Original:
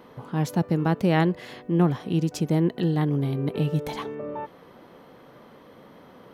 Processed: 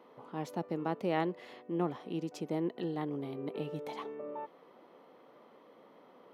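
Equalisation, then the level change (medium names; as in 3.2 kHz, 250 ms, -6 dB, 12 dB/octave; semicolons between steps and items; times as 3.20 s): high-pass 310 Hz 12 dB/octave; peaking EQ 1.6 kHz -7.5 dB 0.23 oct; treble shelf 3.9 kHz -10.5 dB; -7.0 dB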